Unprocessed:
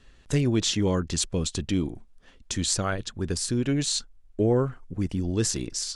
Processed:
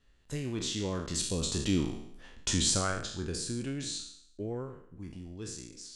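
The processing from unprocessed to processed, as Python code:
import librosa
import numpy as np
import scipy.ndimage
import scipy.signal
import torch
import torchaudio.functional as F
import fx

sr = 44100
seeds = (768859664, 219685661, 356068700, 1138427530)

y = fx.spec_trails(x, sr, decay_s=0.67)
y = fx.doppler_pass(y, sr, speed_mps=7, closest_m=2.9, pass_at_s=2.18)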